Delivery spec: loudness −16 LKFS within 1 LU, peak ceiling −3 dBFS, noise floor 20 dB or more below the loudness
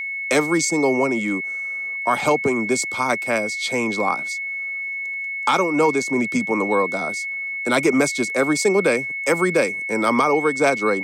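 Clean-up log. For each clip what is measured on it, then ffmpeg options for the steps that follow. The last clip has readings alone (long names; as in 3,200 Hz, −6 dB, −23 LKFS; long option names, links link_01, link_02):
interfering tone 2,200 Hz; level of the tone −25 dBFS; integrated loudness −20.5 LKFS; sample peak −5.0 dBFS; target loudness −16.0 LKFS
→ -af "bandreject=frequency=2200:width=30"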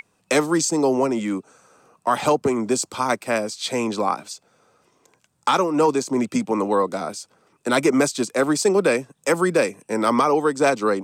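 interfering tone none found; integrated loudness −21.5 LKFS; sample peak −5.5 dBFS; target loudness −16.0 LKFS
→ -af "volume=5.5dB,alimiter=limit=-3dB:level=0:latency=1"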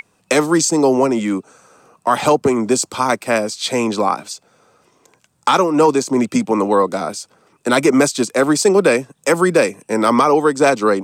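integrated loudness −16.0 LKFS; sample peak −3.0 dBFS; background noise floor −61 dBFS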